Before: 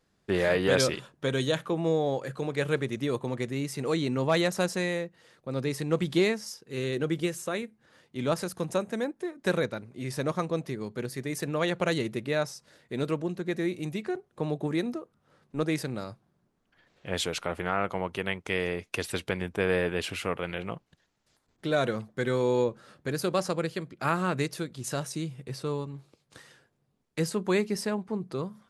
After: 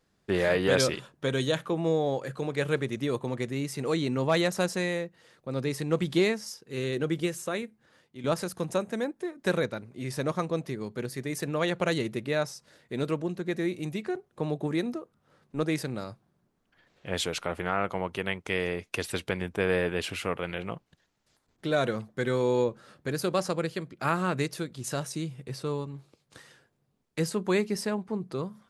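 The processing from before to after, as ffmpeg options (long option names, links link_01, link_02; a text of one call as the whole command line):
ffmpeg -i in.wav -filter_complex "[0:a]asplit=2[link_01][link_02];[link_01]atrim=end=8.24,asetpts=PTS-STARTPTS,afade=type=out:start_time=7.62:duration=0.62:curve=qsin:silence=0.281838[link_03];[link_02]atrim=start=8.24,asetpts=PTS-STARTPTS,afade=type=in:duration=0.004:curve=hsin:silence=0.281838[link_04];[link_03][link_04]concat=n=2:v=0:a=1" out.wav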